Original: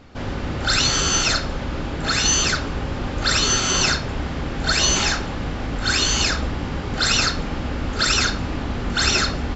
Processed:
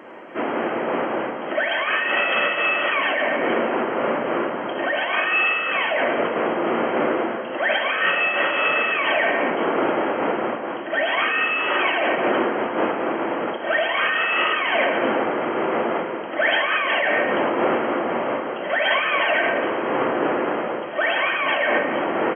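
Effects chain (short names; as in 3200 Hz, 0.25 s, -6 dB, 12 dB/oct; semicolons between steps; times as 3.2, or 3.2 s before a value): HPF 690 Hz 24 dB/oct; reverse; compressor 5:1, threshold -30 dBFS, peak gain reduction 13.5 dB; reverse; doubler 46 ms -11 dB; on a send at -10.5 dB: reverb RT60 0.45 s, pre-delay 3 ms; on the sum: speed mistake 78 rpm record played at 33 rpm; maximiser +24.5 dB; noise-modulated level, depth 60%; gain -8 dB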